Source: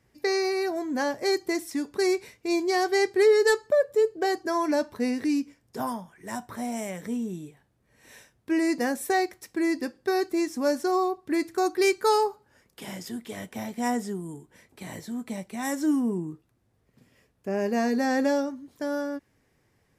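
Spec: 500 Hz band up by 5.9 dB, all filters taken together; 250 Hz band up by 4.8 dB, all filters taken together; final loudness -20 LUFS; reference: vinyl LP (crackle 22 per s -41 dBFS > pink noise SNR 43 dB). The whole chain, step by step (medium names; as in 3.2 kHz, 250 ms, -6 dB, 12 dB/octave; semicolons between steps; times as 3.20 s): peaking EQ 250 Hz +3.5 dB; peaking EQ 500 Hz +6.5 dB; crackle 22 per s -41 dBFS; pink noise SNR 43 dB; trim +2 dB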